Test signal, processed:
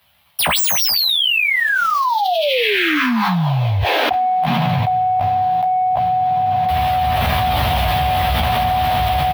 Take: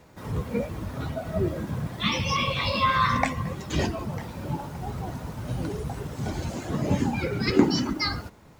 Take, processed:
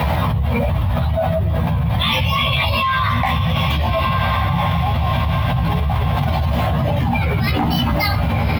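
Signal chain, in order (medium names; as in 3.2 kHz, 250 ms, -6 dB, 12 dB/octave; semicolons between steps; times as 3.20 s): median filter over 5 samples; high-pass 71 Hz 24 dB/octave; chorus voices 6, 0.6 Hz, delay 13 ms, depth 1 ms; treble shelf 6 kHz -6 dB; doubling 17 ms -7.5 dB; echo that smears into a reverb 1300 ms, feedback 47%, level -10.5 dB; saturation -17 dBFS; FFT filter 100 Hz 0 dB, 370 Hz -19 dB, 750 Hz 0 dB, 1.4 kHz -8 dB, 3.3 kHz 0 dB, 6.9 kHz -18 dB, 12 kHz +4 dB; level flattener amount 100%; trim +7.5 dB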